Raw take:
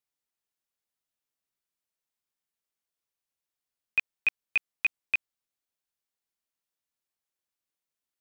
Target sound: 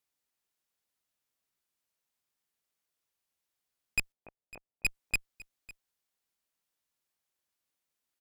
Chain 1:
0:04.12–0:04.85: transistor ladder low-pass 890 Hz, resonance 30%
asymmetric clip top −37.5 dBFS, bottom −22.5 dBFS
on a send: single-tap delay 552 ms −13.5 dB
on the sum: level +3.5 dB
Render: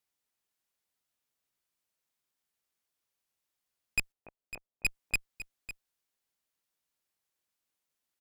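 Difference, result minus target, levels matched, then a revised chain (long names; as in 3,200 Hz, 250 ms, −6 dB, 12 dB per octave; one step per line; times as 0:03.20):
echo-to-direct +7 dB
0:04.12–0:04.85: transistor ladder low-pass 890 Hz, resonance 30%
asymmetric clip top −37.5 dBFS, bottom −22.5 dBFS
on a send: single-tap delay 552 ms −20.5 dB
on the sum: level +3.5 dB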